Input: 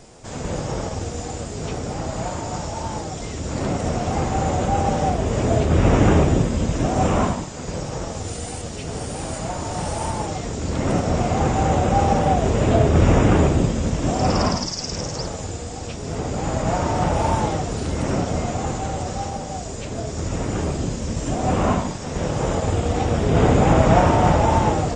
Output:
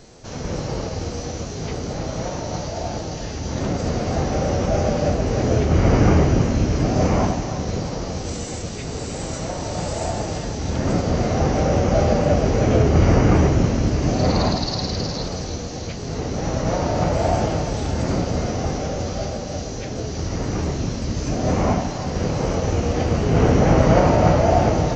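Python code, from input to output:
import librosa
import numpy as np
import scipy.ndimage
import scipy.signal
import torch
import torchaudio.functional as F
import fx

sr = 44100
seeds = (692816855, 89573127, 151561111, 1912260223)

y = fx.echo_split(x, sr, split_hz=660.0, low_ms=554, high_ms=322, feedback_pct=52, wet_db=-9.5)
y = fx.formant_shift(y, sr, semitones=-3)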